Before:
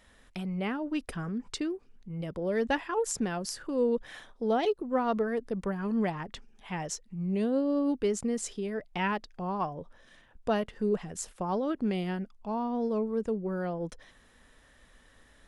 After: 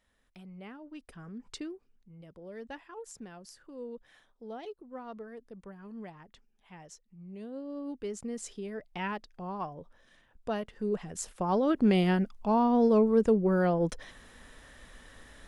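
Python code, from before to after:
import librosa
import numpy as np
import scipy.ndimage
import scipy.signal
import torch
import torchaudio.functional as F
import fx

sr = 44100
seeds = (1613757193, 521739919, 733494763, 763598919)

y = fx.gain(x, sr, db=fx.line((1.06, -14.0), (1.56, -6.0), (2.19, -15.0), (7.33, -15.0), (8.52, -5.0), (10.69, -5.0), (11.98, 7.0)))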